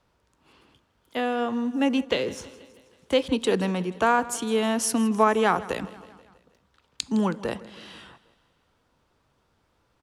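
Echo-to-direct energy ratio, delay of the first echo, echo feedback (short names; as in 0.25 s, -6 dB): -17.0 dB, 0.161 s, 59%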